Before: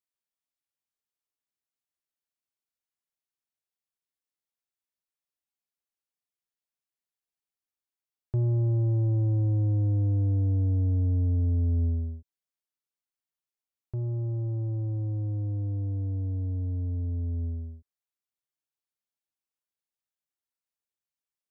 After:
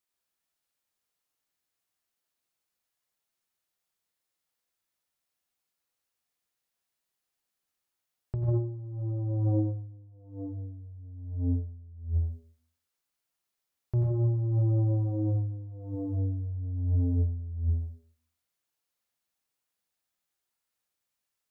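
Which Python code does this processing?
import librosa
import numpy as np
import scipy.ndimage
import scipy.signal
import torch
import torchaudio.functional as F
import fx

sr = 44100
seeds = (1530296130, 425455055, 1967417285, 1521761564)

y = fx.rev_plate(x, sr, seeds[0], rt60_s=0.52, hf_ratio=0.95, predelay_ms=75, drr_db=0.5)
y = fx.over_compress(y, sr, threshold_db=-28.0, ratio=-0.5)
y = fx.hum_notches(y, sr, base_hz=50, count=9)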